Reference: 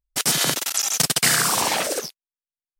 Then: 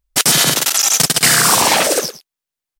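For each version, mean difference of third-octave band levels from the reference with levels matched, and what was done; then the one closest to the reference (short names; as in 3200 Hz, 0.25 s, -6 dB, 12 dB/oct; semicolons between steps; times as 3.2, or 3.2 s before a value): 2.0 dB: soft clip -6 dBFS, distortion -26 dB; on a send: echo 0.109 s -15.5 dB; on the sum: maximiser +11 dB; gain -1 dB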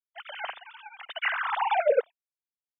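24.5 dB: sine-wave speech; LPF 2600 Hz 6 dB/oct; upward expander 1.5:1, over -36 dBFS; gain -4 dB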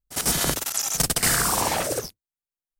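3.0 dB: octaver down 2 oct, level -3 dB; bell 3300 Hz -6.5 dB 2.2 oct; pre-echo 54 ms -14 dB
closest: first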